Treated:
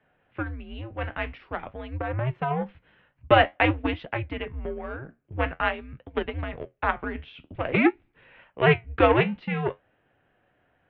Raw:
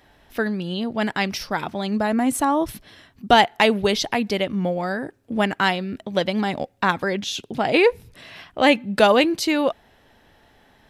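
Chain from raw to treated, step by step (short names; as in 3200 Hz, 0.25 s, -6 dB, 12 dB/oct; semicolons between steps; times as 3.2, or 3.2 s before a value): added harmonics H 7 -21 dB, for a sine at -1 dBFS; mistuned SSB -130 Hz 160–2900 Hz; flange 0.49 Hz, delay 6.9 ms, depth 8.7 ms, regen -62%; gain +2 dB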